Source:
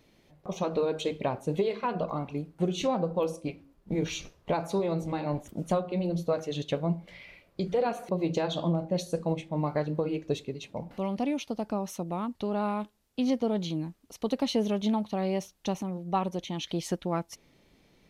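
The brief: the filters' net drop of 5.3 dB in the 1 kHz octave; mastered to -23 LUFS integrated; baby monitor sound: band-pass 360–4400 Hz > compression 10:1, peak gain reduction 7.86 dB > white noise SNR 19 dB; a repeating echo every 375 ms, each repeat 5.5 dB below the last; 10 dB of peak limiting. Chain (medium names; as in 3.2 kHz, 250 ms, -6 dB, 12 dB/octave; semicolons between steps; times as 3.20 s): peaking EQ 1 kHz -7 dB; peak limiter -26 dBFS; band-pass 360–4400 Hz; feedback delay 375 ms, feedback 53%, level -5.5 dB; compression 10:1, threshold -37 dBFS; white noise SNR 19 dB; trim +19.5 dB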